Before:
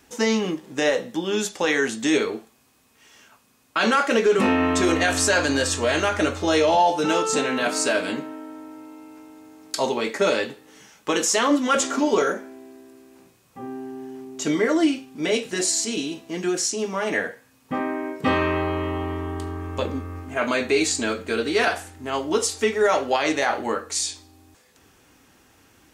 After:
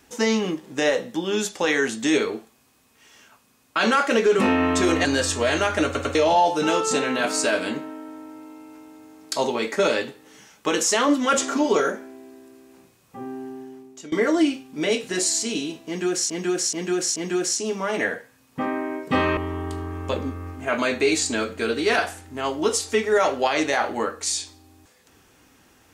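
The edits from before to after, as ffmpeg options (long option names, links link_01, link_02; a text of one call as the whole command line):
ffmpeg -i in.wav -filter_complex "[0:a]asplit=10[link_01][link_02][link_03][link_04][link_05][link_06][link_07][link_08][link_09][link_10];[link_01]atrim=end=5.052[link_11];[link_02]atrim=start=5.468:end=6.372[link_12];[link_03]atrim=start=6.268:end=6.372[link_13];[link_04]atrim=start=6.268:end=6.372[link_14];[link_05]atrim=start=6.568:end=14.54,asetpts=PTS-STARTPTS,afade=type=out:start_time=7.322:duration=0.65:silence=0.0794328[link_15];[link_06]atrim=start=14.54:end=16.722,asetpts=PTS-STARTPTS,afade=type=in:duration=0.004:curve=hsin:silence=0.0794328[link_16];[link_07]atrim=start=16.288:end=16.722[link_17];[link_08]atrim=start=16.288:end=16.722[link_18];[link_09]atrim=start=16.288:end=18.502[link_19];[link_10]atrim=start=19.058[link_20];[link_11][link_12]acrossfade=duration=0.004:curve1=hsin:curve2=hsin[link_21];[link_21][link_13]acrossfade=duration=0.004:curve1=hsin:curve2=hsin[link_22];[link_22][link_14]acrossfade=duration=0.004:curve1=hsin:curve2=hsin[link_23];[link_15][link_16]concat=n=2:v=0:a=1[link_24];[link_23][link_24]acrossfade=duration=0.004:curve1=hsin:curve2=hsin[link_25];[link_25][link_17]acrossfade=duration=0.004:curve1=hsin:curve2=hsin[link_26];[link_26][link_18]acrossfade=duration=0.004:curve1=hsin:curve2=hsin[link_27];[link_27][link_19]acrossfade=duration=0.004:curve1=hsin:curve2=hsin[link_28];[link_28][link_20]acrossfade=duration=0.004:curve1=hsin:curve2=hsin" out.wav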